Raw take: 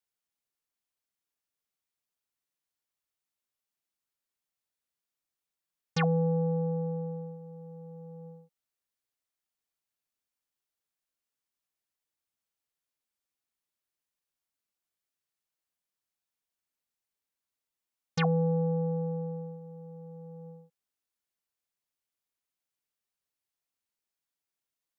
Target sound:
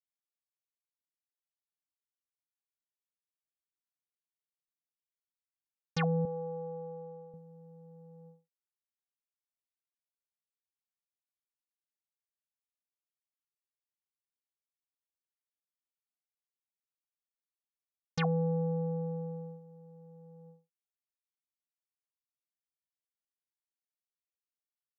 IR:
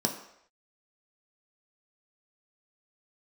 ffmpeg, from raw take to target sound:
-filter_complex "[0:a]agate=range=0.0224:threshold=0.00891:ratio=3:detection=peak,asettb=1/sr,asplit=3[s0][s1][s2];[s0]atrim=end=6.254[s3];[s1]atrim=start=6.25:end=7.34,asetpts=PTS-STARTPTS,afade=t=in:d=0.004:c=qsin,afade=t=out:st=1.086:d=0.004:c=qsin,bandpass=f=810:t=q:w=0.87:csg=0[s4];[s2]atrim=start=7.336[s5];[s3][s4]acrossfade=d=0.004:c1=hsin:c2=qsin[s6];[s6][s5]acrossfade=d=0.004:c1=qsin:c2=hsin,volume=0.668"

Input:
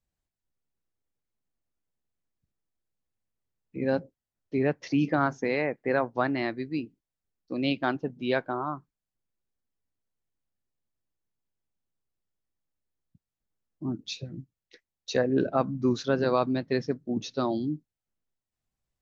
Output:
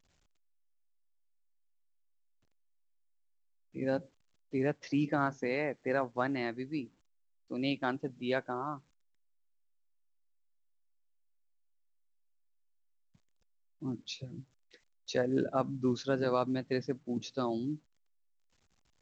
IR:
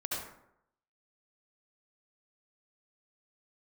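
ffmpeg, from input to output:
-af "volume=0.531" -ar 16000 -c:a pcm_alaw

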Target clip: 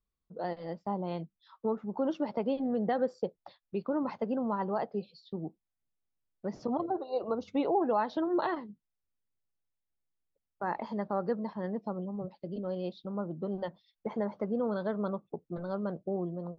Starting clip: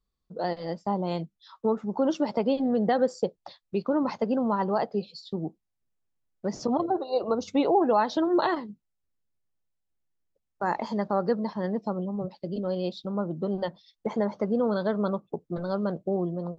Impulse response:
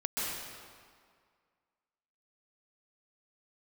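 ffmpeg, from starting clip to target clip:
-af "lowpass=3200,volume=0.501"

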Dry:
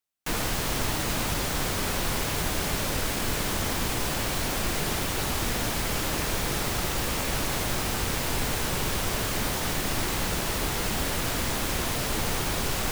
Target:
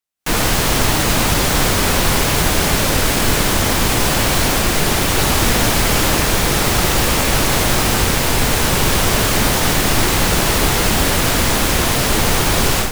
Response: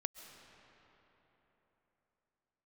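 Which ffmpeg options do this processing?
-filter_complex "[0:a]dynaudnorm=f=160:g=3:m=5.62,asplit=2[s0][s1];[1:a]atrim=start_sample=2205,asetrate=26460,aresample=44100[s2];[s1][s2]afir=irnorm=-1:irlink=0,volume=0.376[s3];[s0][s3]amix=inputs=2:normalize=0,volume=0.708"

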